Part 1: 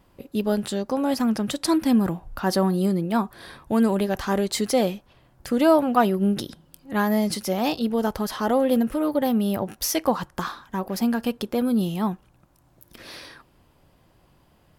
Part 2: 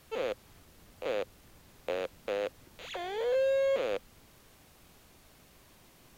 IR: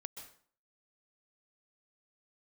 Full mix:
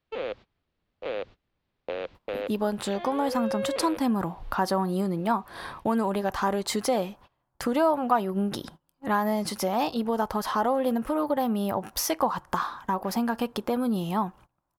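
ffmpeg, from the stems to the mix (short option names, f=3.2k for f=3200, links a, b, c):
-filter_complex "[0:a]equalizer=f=970:w=1.1:g=10,adelay=2150,volume=0.5dB[a];[1:a]acontrast=42,lowpass=f=4.3k:w=0.5412,lowpass=f=4.3k:w=1.3066,volume=-3.5dB[b];[a][b]amix=inputs=2:normalize=0,agate=range=-23dB:threshold=-43dB:ratio=16:detection=peak,acompressor=threshold=-28dB:ratio=2"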